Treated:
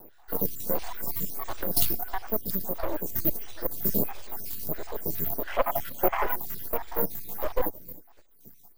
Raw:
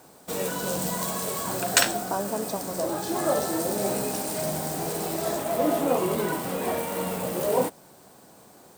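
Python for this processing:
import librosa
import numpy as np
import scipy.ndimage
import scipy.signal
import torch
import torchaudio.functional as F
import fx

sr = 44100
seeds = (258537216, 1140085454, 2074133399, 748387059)

p1 = fx.spec_dropout(x, sr, seeds[0], share_pct=75)
p2 = fx.high_shelf(p1, sr, hz=11000.0, db=7.0)
p3 = np.maximum(p2, 0.0)
p4 = (np.kron(scipy.signal.resample_poly(p3, 1, 3), np.eye(3)[0]) * 3)[:len(p3)]
p5 = fx.low_shelf(p4, sr, hz=470.0, db=8.0)
p6 = p5 + 10.0 ** (-22.5 / 20.0) * np.pad(p5, (int(312 * sr / 1000.0), 0))[:len(p5)]
p7 = 10.0 ** (-13.0 / 20.0) * (np.abs((p6 / 10.0 ** (-13.0 / 20.0) + 3.0) % 4.0 - 2.0) - 1.0)
p8 = p6 + (p7 * librosa.db_to_amplitude(-7.5))
p9 = fx.spec_box(p8, sr, start_s=5.47, length_s=0.77, low_hz=520.0, high_hz=3400.0, gain_db=11)
y = fx.stagger_phaser(p9, sr, hz=1.5)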